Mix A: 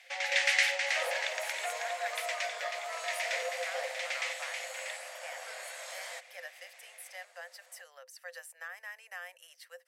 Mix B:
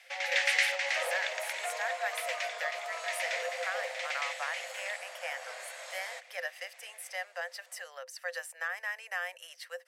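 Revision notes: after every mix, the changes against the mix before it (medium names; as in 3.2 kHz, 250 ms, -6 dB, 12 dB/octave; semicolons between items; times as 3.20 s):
speech +8.5 dB; master: add treble shelf 9 kHz -8.5 dB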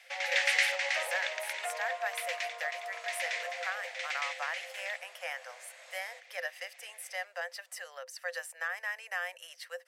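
second sound -10.0 dB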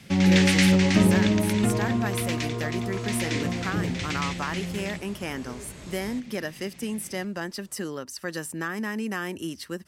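master: remove rippled Chebyshev high-pass 500 Hz, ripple 9 dB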